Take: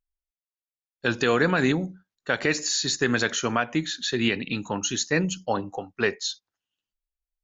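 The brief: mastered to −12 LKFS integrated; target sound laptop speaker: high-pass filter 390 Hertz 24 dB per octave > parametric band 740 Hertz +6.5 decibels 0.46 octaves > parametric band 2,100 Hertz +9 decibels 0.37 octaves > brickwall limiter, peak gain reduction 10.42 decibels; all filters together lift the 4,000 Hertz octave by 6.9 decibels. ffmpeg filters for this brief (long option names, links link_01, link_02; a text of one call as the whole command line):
ffmpeg -i in.wav -af "highpass=frequency=390:width=0.5412,highpass=frequency=390:width=1.3066,equalizer=frequency=740:width_type=o:width=0.46:gain=6.5,equalizer=frequency=2100:width_type=o:width=0.37:gain=9,equalizer=frequency=4000:width_type=o:gain=7.5,volume=14dB,alimiter=limit=-1dB:level=0:latency=1" out.wav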